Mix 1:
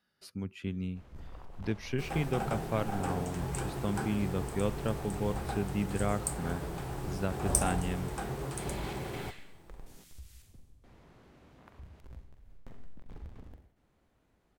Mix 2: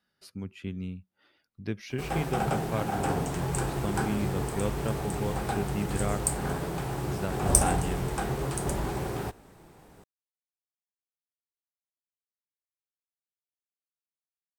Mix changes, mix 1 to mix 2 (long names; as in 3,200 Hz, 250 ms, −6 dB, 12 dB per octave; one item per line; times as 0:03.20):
first sound: muted
second sound +6.5 dB